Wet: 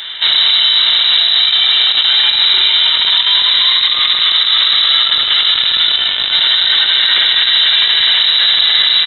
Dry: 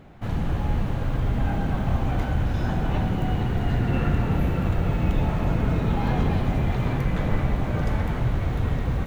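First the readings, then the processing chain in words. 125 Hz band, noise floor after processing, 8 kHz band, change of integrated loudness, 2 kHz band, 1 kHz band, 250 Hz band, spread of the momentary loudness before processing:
below −25 dB, −16 dBFS, can't be measured, +17.0 dB, +19.5 dB, +6.0 dB, below −15 dB, 3 LU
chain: high-pass filter 200 Hz 6 dB per octave
phaser with its sweep stopped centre 890 Hz, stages 8
in parallel at −5 dB: bit reduction 4 bits
on the sum: compressor whose output falls as the input rises −34 dBFS, ratio −0.5
on a send: repeating echo 75 ms, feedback 56%, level −11.5 dB
on the sum: voice inversion scrambler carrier 3,900 Hz
boost into a limiter +29 dB
level −1 dB

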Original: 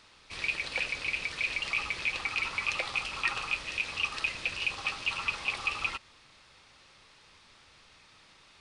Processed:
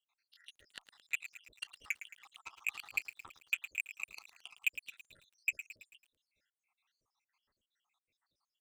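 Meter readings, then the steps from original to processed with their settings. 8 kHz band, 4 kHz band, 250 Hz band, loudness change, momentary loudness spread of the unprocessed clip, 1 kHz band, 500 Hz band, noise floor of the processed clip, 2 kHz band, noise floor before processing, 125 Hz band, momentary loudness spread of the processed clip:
−5.5 dB, −15.0 dB, below −20 dB, −8.5 dB, 3 LU, −21.0 dB, below −25 dB, below −85 dBFS, −10.0 dB, −59 dBFS, below −25 dB, 18 LU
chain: time-frequency cells dropped at random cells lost 84%
harmonic generator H 7 −18 dB, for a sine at −17.5 dBFS
feedback echo at a low word length 110 ms, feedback 55%, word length 9 bits, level −12 dB
level −1.5 dB

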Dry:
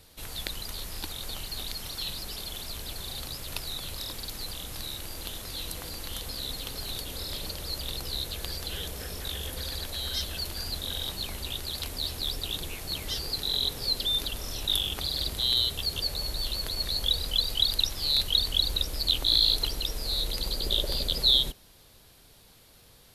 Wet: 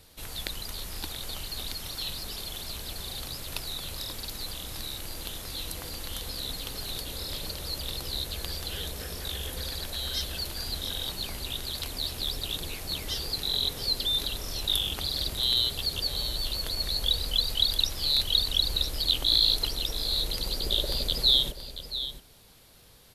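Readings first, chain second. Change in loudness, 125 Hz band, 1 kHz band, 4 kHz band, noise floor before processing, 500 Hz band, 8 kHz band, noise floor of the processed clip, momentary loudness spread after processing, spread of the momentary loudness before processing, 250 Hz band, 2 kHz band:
0.0 dB, 0.0 dB, +0.5 dB, +0.5 dB, −56 dBFS, +0.5 dB, +0.5 dB, −46 dBFS, 13 LU, 13 LU, +0.5 dB, +0.5 dB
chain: single-tap delay 679 ms −11.5 dB

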